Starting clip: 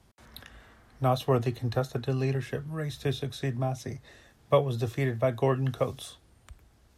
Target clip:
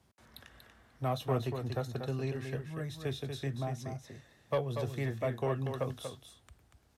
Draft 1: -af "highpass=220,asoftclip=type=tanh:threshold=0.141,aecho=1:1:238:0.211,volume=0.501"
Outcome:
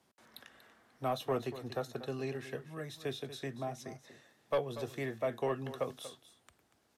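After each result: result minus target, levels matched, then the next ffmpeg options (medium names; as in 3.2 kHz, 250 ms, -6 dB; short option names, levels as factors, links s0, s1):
125 Hz band -7.5 dB; echo-to-direct -6.5 dB
-af "highpass=63,asoftclip=type=tanh:threshold=0.141,aecho=1:1:238:0.211,volume=0.501"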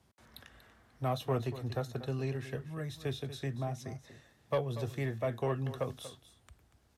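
echo-to-direct -6.5 dB
-af "highpass=63,asoftclip=type=tanh:threshold=0.141,aecho=1:1:238:0.447,volume=0.501"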